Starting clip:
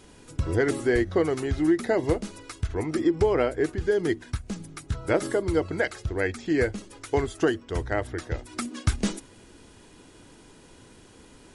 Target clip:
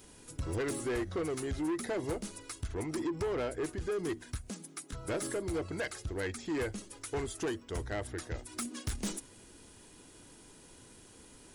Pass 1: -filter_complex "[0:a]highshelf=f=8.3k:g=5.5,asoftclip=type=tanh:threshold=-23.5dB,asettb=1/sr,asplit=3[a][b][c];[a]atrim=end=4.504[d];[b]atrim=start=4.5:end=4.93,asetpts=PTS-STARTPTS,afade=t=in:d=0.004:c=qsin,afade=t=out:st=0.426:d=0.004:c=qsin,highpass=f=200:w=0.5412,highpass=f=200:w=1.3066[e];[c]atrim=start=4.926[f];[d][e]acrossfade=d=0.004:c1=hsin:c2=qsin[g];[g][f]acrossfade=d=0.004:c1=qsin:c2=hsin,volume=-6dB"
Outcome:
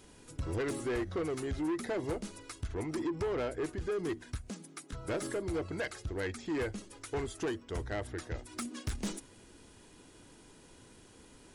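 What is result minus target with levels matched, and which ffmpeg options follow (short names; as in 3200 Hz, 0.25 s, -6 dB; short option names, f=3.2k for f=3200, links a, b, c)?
8000 Hz band -4.5 dB
-filter_complex "[0:a]highshelf=f=8.3k:g=15.5,asoftclip=type=tanh:threshold=-23.5dB,asettb=1/sr,asplit=3[a][b][c];[a]atrim=end=4.504[d];[b]atrim=start=4.5:end=4.93,asetpts=PTS-STARTPTS,afade=t=in:d=0.004:c=qsin,afade=t=out:st=0.426:d=0.004:c=qsin,highpass=f=200:w=0.5412,highpass=f=200:w=1.3066[e];[c]atrim=start=4.926[f];[d][e]acrossfade=d=0.004:c1=hsin:c2=qsin[g];[g][f]acrossfade=d=0.004:c1=qsin:c2=hsin,volume=-6dB"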